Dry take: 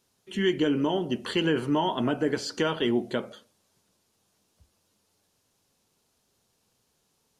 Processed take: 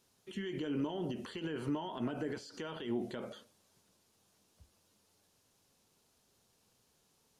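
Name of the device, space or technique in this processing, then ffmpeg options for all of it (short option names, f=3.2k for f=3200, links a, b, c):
de-esser from a sidechain: -filter_complex "[0:a]asplit=2[a][b];[b]highpass=f=5.9k:p=1,apad=whole_len=326209[c];[a][c]sidechaincompress=threshold=-56dB:ratio=4:attack=4:release=40,volume=-1dB"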